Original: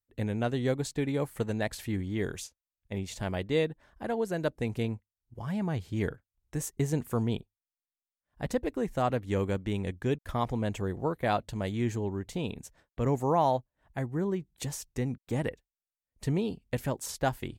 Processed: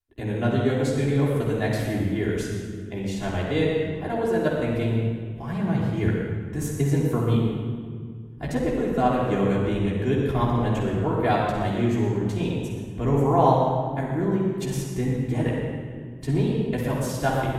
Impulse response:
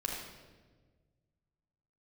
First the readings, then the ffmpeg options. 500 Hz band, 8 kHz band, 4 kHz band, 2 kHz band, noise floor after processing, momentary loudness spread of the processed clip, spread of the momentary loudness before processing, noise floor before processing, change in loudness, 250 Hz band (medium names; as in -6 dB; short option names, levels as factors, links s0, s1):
+7.0 dB, +1.5 dB, +5.0 dB, +6.5 dB, -36 dBFS, 8 LU, 8 LU, under -85 dBFS, +7.5 dB, +8.5 dB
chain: -filter_complex "[0:a]equalizer=f=7500:t=o:w=1:g=-3.5[s0];[1:a]atrim=start_sample=2205,asetrate=27342,aresample=44100[s1];[s0][s1]afir=irnorm=-1:irlink=0"